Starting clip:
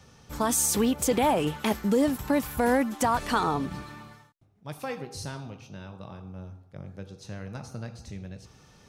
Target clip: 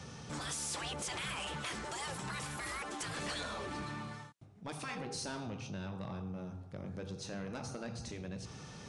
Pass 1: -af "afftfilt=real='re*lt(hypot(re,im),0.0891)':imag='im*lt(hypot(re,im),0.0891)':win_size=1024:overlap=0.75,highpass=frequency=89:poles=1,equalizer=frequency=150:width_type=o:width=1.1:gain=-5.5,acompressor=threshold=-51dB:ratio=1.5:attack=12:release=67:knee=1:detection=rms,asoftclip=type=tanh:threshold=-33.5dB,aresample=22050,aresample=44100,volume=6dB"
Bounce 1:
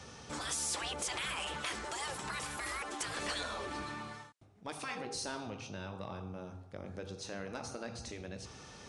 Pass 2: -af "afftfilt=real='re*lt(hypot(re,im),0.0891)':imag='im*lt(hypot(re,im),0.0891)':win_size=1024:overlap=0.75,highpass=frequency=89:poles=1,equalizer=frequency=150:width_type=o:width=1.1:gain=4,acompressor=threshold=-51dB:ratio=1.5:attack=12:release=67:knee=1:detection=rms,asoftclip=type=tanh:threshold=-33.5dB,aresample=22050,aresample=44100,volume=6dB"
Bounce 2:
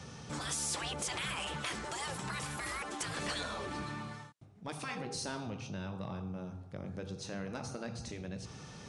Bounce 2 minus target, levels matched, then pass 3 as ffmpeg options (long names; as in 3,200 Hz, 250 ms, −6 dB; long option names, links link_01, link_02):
soft clipping: distortion −7 dB
-af "afftfilt=real='re*lt(hypot(re,im),0.0891)':imag='im*lt(hypot(re,im),0.0891)':win_size=1024:overlap=0.75,highpass=frequency=89:poles=1,equalizer=frequency=150:width_type=o:width=1.1:gain=4,acompressor=threshold=-51dB:ratio=1.5:attack=12:release=67:knee=1:detection=rms,asoftclip=type=tanh:threshold=-40dB,aresample=22050,aresample=44100,volume=6dB"